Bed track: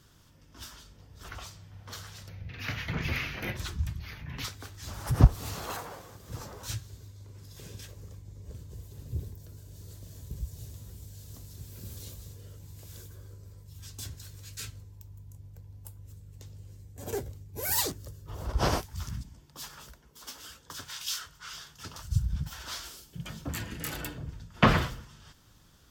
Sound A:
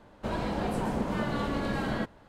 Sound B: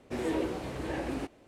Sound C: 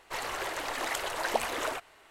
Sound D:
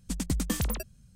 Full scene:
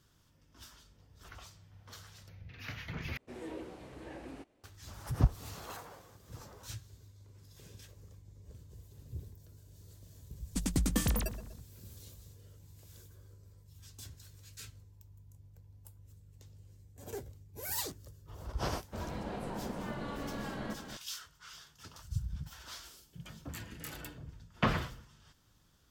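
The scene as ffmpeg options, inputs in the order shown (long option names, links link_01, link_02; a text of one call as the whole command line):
ffmpeg -i bed.wav -i cue0.wav -i cue1.wav -i cue2.wav -i cue3.wav -filter_complex "[0:a]volume=-8.5dB[link_01];[4:a]asplit=2[link_02][link_03];[link_03]adelay=122,lowpass=frequency=2000:poles=1,volume=-11dB,asplit=2[link_04][link_05];[link_05]adelay=122,lowpass=frequency=2000:poles=1,volume=0.51,asplit=2[link_06][link_07];[link_07]adelay=122,lowpass=frequency=2000:poles=1,volume=0.51,asplit=2[link_08][link_09];[link_09]adelay=122,lowpass=frequency=2000:poles=1,volume=0.51,asplit=2[link_10][link_11];[link_11]adelay=122,lowpass=frequency=2000:poles=1,volume=0.51[link_12];[link_02][link_04][link_06][link_08][link_10][link_12]amix=inputs=6:normalize=0[link_13];[1:a]aecho=1:1:315:0.422[link_14];[link_01]asplit=2[link_15][link_16];[link_15]atrim=end=3.174[link_17];[2:a]atrim=end=1.47,asetpts=PTS-STARTPTS,volume=-12.5dB[link_18];[link_16]atrim=start=4.636[link_19];[link_13]atrim=end=1.15,asetpts=PTS-STARTPTS,volume=-1.5dB,afade=type=in:duration=0.004:curve=hsin,afade=type=out:start_time=1.146:duration=0.004:curve=hsin,adelay=10460[link_20];[link_14]atrim=end=2.28,asetpts=PTS-STARTPTS,volume=-10dB,afade=type=in:duration=0.004:curve=hsin,afade=type=out:start_time=2.276:duration=0.004:curve=hsin,adelay=18690[link_21];[link_17][link_18]acrossfade=duration=0.004:curve1=hsin:curve2=hsin[link_22];[link_22][link_19]acrossfade=duration=0.004:curve1=hsin:curve2=hsin[link_23];[link_23][link_20][link_21]amix=inputs=3:normalize=0" out.wav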